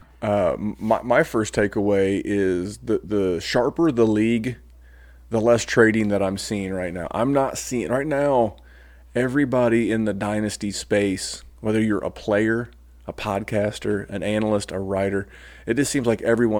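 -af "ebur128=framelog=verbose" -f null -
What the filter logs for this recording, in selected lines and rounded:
Integrated loudness:
  I:         -22.2 LUFS
  Threshold: -32.6 LUFS
Loudness range:
  LRA:         3.4 LU
  Threshold: -42.6 LUFS
  LRA low:   -24.5 LUFS
  LRA high:  -21.0 LUFS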